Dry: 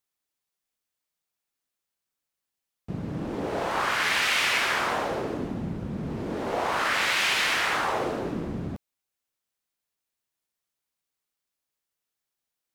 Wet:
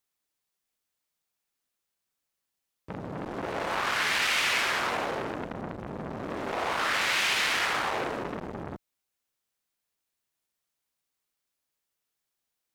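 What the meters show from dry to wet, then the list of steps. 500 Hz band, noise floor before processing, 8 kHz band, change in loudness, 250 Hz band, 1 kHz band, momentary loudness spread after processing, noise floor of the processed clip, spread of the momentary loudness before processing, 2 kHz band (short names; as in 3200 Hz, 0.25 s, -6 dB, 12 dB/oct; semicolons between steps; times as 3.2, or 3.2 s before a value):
-3.0 dB, under -85 dBFS, -1.5 dB, -2.0 dB, -5.5 dB, -2.5 dB, 15 LU, -84 dBFS, 12 LU, -2.0 dB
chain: in parallel at +2 dB: limiter -19.5 dBFS, peak gain reduction 7 dB; on the sum: core saturation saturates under 2200 Hz; gain -5.5 dB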